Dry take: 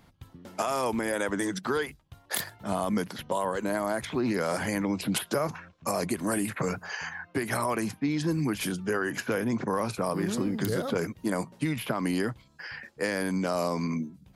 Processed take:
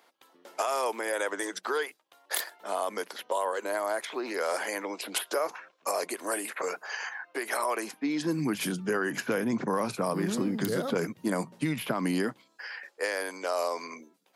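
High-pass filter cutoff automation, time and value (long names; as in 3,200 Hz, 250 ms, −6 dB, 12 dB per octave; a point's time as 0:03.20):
high-pass filter 24 dB per octave
0:07.75 390 Hz
0:08.54 140 Hz
0:12.19 140 Hz
0:12.65 420 Hz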